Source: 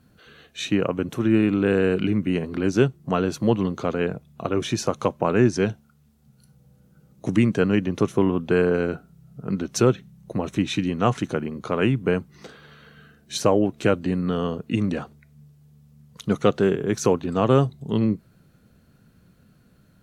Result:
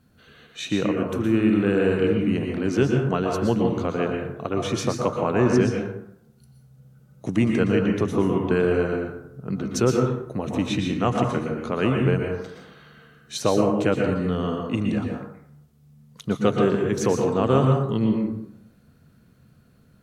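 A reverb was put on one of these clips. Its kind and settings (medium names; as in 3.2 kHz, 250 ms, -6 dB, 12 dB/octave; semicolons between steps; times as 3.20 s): plate-style reverb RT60 0.77 s, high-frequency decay 0.5×, pre-delay 105 ms, DRR 1 dB; trim -2.5 dB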